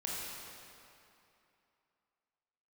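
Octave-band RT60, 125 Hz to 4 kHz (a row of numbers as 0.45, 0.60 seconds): 2.5, 2.7, 2.7, 2.9, 2.6, 2.2 seconds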